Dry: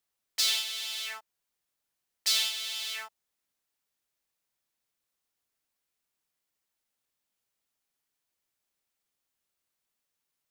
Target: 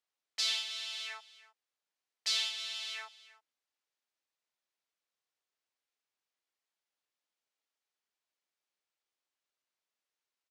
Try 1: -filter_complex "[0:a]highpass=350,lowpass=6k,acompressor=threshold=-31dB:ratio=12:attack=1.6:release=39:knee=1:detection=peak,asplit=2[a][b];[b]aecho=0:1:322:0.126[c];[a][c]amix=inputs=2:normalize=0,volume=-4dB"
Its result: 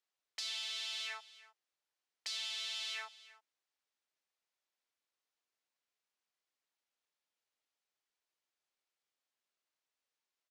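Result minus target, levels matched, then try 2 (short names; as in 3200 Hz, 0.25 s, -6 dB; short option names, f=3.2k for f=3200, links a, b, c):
compressor: peak gain reduction +10.5 dB
-filter_complex "[0:a]highpass=350,lowpass=6k,asplit=2[a][b];[b]aecho=0:1:322:0.126[c];[a][c]amix=inputs=2:normalize=0,volume=-4dB"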